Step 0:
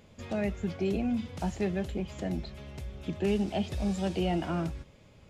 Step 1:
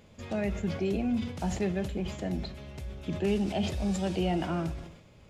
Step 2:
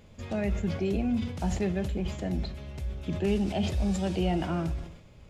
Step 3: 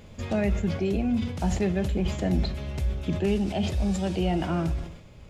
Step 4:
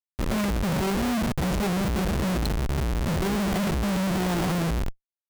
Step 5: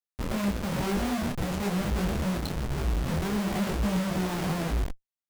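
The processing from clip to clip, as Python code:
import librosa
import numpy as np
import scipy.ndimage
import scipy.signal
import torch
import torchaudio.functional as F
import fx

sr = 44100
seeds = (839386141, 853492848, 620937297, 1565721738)

y1 = fx.rev_schroeder(x, sr, rt60_s=1.0, comb_ms=33, drr_db=16.0)
y1 = fx.sustainer(y1, sr, db_per_s=73.0)
y2 = fx.low_shelf(y1, sr, hz=71.0, db=10.5)
y3 = fx.rider(y2, sr, range_db=4, speed_s=0.5)
y3 = y3 * 10.0 ** (3.5 / 20.0)
y4 = y3 + 0.99 * np.pad(y3, (int(5.3 * sr / 1000.0), 0))[:len(y3)]
y4 = fx.schmitt(y4, sr, flips_db=-29.0)
y4 = y4 * 10.0 ** (-2.0 / 20.0)
y5 = fx.detune_double(y4, sr, cents=36)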